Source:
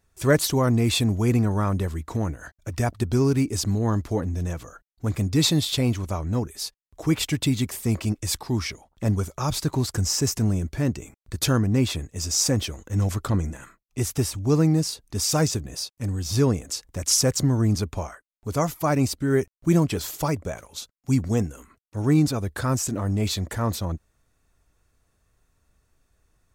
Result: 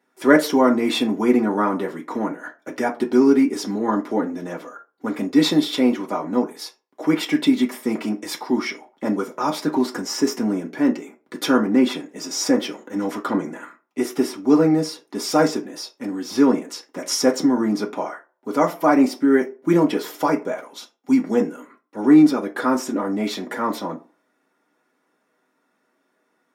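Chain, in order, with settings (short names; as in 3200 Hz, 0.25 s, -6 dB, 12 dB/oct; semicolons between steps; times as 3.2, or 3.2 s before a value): HPF 260 Hz 24 dB/oct; reverb RT60 0.35 s, pre-delay 3 ms, DRR -1.5 dB; gain -1 dB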